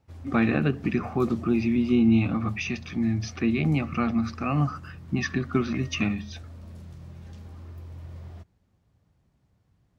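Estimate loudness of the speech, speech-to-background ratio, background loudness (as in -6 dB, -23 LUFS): -26.0 LUFS, 17.5 dB, -43.5 LUFS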